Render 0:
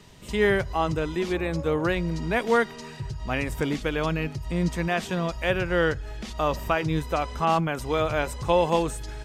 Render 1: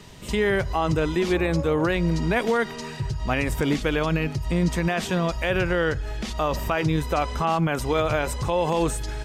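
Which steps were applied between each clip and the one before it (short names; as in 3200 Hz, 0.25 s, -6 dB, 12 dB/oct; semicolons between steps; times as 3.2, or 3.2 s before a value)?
limiter -18.5 dBFS, peak gain reduction 10.5 dB; gain +5.5 dB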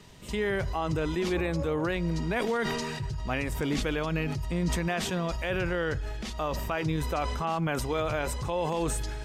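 sustainer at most 23 dB/s; gain -7 dB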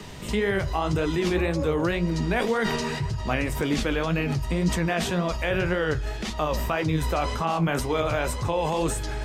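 flange 1.9 Hz, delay 8.7 ms, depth 9.7 ms, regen +49%; three-band squash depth 40%; gain +8 dB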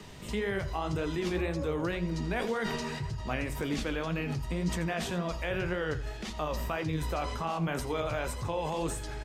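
echo 84 ms -15 dB; gain -7.5 dB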